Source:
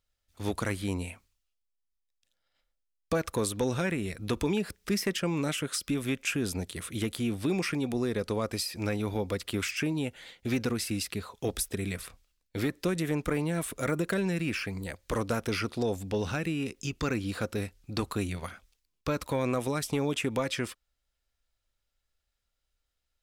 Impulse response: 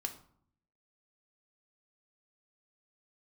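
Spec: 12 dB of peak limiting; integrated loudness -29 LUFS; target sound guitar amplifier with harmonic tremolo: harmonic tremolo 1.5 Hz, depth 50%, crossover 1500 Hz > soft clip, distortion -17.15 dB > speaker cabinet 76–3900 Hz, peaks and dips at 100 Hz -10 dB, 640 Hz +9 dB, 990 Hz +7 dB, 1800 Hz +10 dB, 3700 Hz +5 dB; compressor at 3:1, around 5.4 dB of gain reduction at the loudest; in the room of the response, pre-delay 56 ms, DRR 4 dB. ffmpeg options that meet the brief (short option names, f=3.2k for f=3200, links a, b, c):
-filter_complex "[0:a]acompressor=threshold=-32dB:ratio=3,alimiter=level_in=8dB:limit=-24dB:level=0:latency=1,volume=-8dB,asplit=2[a][b];[1:a]atrim=start_sample=2205,adelay=56[c];[b][c]afir=irnorm=-1:irlink=0,volume=-4dB[d];[a][d]amix=inputs=2:normalize=0,acrossover=split=1500[e][f];[e]aeval=exprs='val(0)*(1-0.5/2+0.5/2*cos(2*PI*1.5*n/s))':c=same[g];[f]aeval=exprs='val(0)*(1-0.5/2-0.5/2*cos(2*PI*1.5*n/s))':c=same[h];[g][h]amix=inputs=2:normalize=0,asoftclip=threshold=-35dB,highpass=76,equalizer=f=100:t=q:w=4:g=-10,equalizer=f=640:t=q:w=4:g=9,equalizer=f=990:t=q:w=4:g=7,equalizer=f=1.8k:t=q:w=4:g=10,equalizer=f=3.7k:t=q:w=4:g=5,lowpass=f=3.9k:w=0.5412,lowpass=f=3.9k:w=1.3066,volume=14dB"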